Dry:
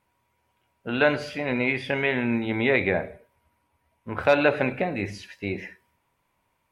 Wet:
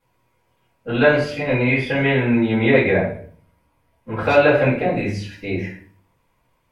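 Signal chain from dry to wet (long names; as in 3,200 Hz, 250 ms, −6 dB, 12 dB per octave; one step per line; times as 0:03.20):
rectangular room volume 37 cubic metres, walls mixed, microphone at 2 metres
level −6 dB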